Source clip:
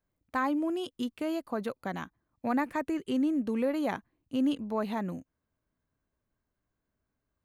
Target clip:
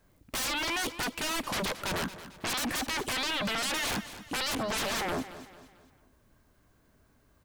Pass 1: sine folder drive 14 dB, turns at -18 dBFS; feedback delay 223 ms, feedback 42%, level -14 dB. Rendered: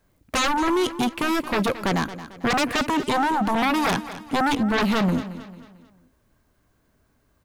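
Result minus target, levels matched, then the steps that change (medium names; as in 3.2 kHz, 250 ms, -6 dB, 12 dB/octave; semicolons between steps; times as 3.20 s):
sine folder: distortion -22 dB
change: sine folder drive 14 dB, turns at -28.5 dBFS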